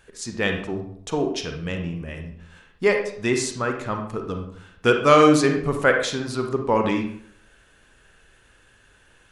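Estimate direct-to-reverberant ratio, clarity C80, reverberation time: 4.0 dB, 10.0 dB, 0.65 s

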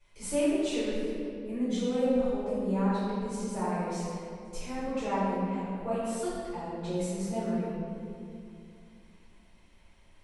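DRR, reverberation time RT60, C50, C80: -15.0 dB, 2.5 s, -4.0 dB, -2.0 dB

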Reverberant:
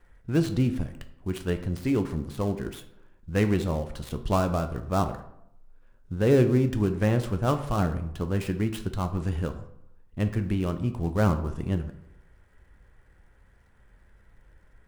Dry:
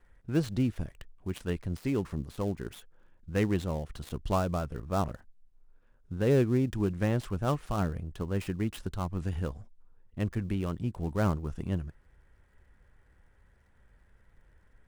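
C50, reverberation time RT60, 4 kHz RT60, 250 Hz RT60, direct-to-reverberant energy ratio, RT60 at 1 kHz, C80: 11.5 dB, 0.75 s, 0.45 s, 0.80 s, 7.5 dB, 0.75 s, 14.5 dB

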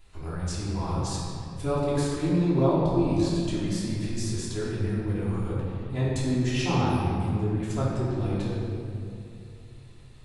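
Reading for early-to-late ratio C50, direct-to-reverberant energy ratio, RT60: -2.0 dB, -9.0 dB, 2.6 s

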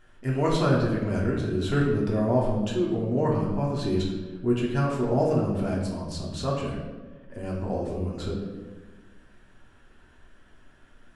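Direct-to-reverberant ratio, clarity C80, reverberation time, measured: -4.0 dB, 5.5 dB, 1.3 s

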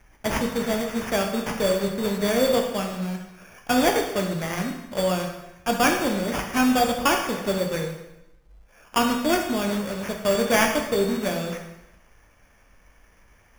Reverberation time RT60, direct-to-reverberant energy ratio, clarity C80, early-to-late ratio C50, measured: 0.90 s, 2.0 dB, 8.0 dB, 5.5 dB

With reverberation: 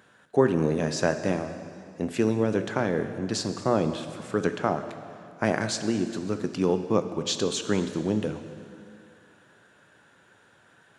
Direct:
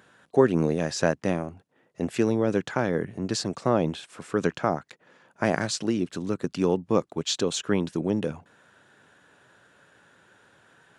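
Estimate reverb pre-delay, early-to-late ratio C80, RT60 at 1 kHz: 5 ms, 10.5 dB, 2.4 s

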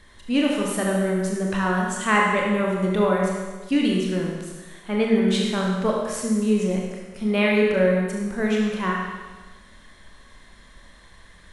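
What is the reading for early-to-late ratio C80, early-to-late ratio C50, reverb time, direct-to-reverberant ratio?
2.5 dB, 0.5 dB, 1.3 s, -2.0 dB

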